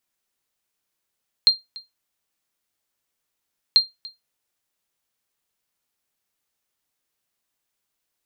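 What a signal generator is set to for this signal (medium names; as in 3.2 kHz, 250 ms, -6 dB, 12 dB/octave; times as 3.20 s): sonar ping 4.19 kHz, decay 0.18 s, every 2.29 s, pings 2, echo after 0.29 s, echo -22.5 dB -6 dBFS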